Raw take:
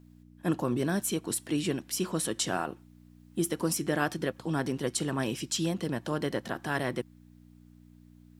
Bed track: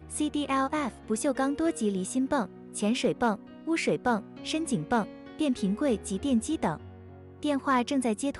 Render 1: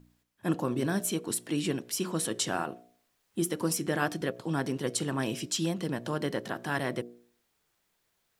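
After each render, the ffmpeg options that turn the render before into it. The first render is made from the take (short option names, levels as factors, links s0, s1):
-af "bandreject=f=60:t=h:w=4,bandreject=f=120:t=h:w=4,bandreject=f=180:t=h:w=4,bandreject=f=240:t=h:w=4,bandreject=f=300:t=h:w=4,bandreject=f=360:t=h:w=4,bandreject=f=420:t=h:w=4,bandreject=f=480:t=h:w=4,bandreject=f=540:t=h:w=4,bandreject=f=600:t=h:w=4,bandreject=f=660:t=h:w=4,bandreject=f=720:t=h:w=4"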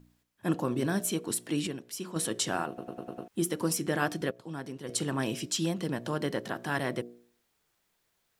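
-filter_complex "[0:a]asplit=11[s0][s1][s2][s3][s4][s5][s6][s7][s8][s9][s10];[s0]atrim=end=1.672[s11];[s1]atrim=start=1.668:end=2.162,asetpts=PTS-STARTPTS,volume=0.473[s12];[s2]atrim=start=2.158:end=2.782[s13];[s3]atrim=start=2.678:end=2.782[s14];[s4]atrim=start=2.678:end=2.782[s15];[s5]atrim=start=2.678:end=2.782[s16];[s6]atrim=start=2.678:end=2.782[s17];[s7]atrim=start=2.678:end=2.782[s18];[s8]atrim=start=3.278:end=4.312[s19];[s9]atrim=start=4.308:end=4.892,asetpts=PTS-STARTPTS,volume=0.376[s20];[s10]atrim=start=4.888[s21];[s11][s12]acrossfade=d=0.004:c1=hsin:c2=hsin[s22];[s22][s13]acrossfade=d=0.004:c1=hsin:c2=hsin[s23];[s23][s14]acrossfade=d=0.004:c1=hsin:c2=hsin[s24];[s24][s15]acrossfade=d=0.004:c1=hsin:c2=hsin[s25];[s25][s16]acrossfade=d=0.004:c1=hsin:c2=hsin[s26];[s26][s17]acrossfade=d=0.004:c1=hsin:c2=hsin[s27];[s27][s18]acrossfade=d=0.004:c1=hsin:c2=hsin[s28];[s28][s19]acrossfade=d=0.004:c1=hsin:c2=hsin[s29];[s29][s20]acrossfade=d=0.004:c1=hsin:c2=hsin[s30];[s30][s21]acrossfade=d=0.004:c1=hsin:c2=hsin"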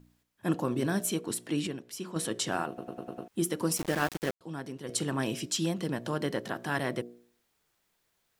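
-filter_complex "[0:a]asettb=1/sr,asplit=3[s0][s1][s2];[s0]atrim=end=1.214[s3];[s1]atrim=start=1.21:end=2.52,asetpts=PTS-STARTPTS,afade=t=in:d=0.004:c=qsin,afade=t=out:st=1.306:d=0.004:c=qsin,highshelf=f=6200:g=-4.5[s4];[s2]atrim=start=2.516[s5];[s3][s4]acrossfade=d=0.004:c1=hsin:c2=qsin[s6];[s6][s5]acrossfade=d=0.004:c1=qsin:c2=hsin,asettb=1/sr,asplit=3[s7][s8][s9];[s7]atrim=end=3.774[s10];[s8]atrim=start=3.77:end=4.41,asetpts=PTS-STARTPTS,afade=t=in:d=0.004:c=qsin,afade=t=out:st=0.636:d=0.004:c=qsin,aeval=exprs='val(0)*gte(abs(val(0)),0.0224)':c=same[s11];[s9]atrim=start=4.406[s12];[s10][s11]acrossfade=d=0.004:c1=hsin:c2=qsin[s13];[s13][s12]acrossfade=d=0.004:c1=qsin:c2=hsin"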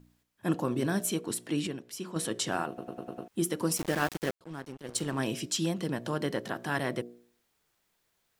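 -filter_complex "[0:a]asettb=1/sr,asplit=3[s0][s1][s2];[s0]atrim=end=4.444[s3];[s1]atrim=start=4.44:end=5.19,asetpts=PTS-STARTPTS,afade=t=in:d=0.004:c=qsin,afade=t=out:st=0.746:d=0.004:c=qsin,aeval=exprs='sgn(val(0))*max(abs(val(0))-0.00473,0)':c=same[s4];[s2]atrim=start=5.186[s5];[s3][s4]acrossfade=d=0.004:c1=hsin:c2=qsin[s6];[s6][s5]acrossfade=d=0.004:c1=qsin:c2=hsin"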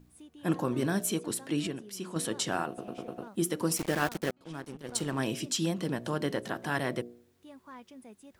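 -filter_complex "[1:a]volume=0.0708[s0];[0:a][s0]amix=inputs=2:normalize=0"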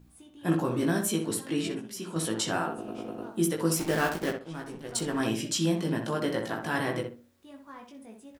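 -filter_complex "[0:a]asplit=2[s0][s1];[s1]adelay=18,volume=0.668[s2];[s0][s2]amix=inputs=2:normalize=0,asplit=2[s3][s4];[s4]adelay=63,lowpass=f=2100:p=1,volume=0.531,asplit=2[s5][s6];[s6]adelay=63,lowpass=f=2100:p=1,volume=0.27,asplit=2[s7][s8];[s8]adelay=63,lowpass=f=2100:p=1,volume=0.27,asplit=2[s9][s10];[s10]adelay=63,lowpass=f=2100:p=1,volume=0.27[s11];[s5][s7][s9][s11]amix=inputs=4:normalize=0[s12];[s3][s12]amix=inputs=2:normalize=0"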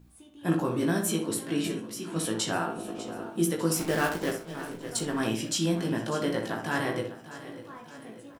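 -filter_complex "[0:a]asplit=2[s0][s1];[s1]adelay=35,volume=0.211[s2];[s0][s2]amix=inputs=2:normalize=0,aecho=1:1:598|1196|1794|2392|2990:0.178|0.096|0.0519|0.028|0.0151"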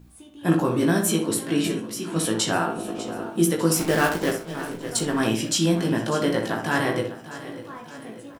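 -af "volume=2"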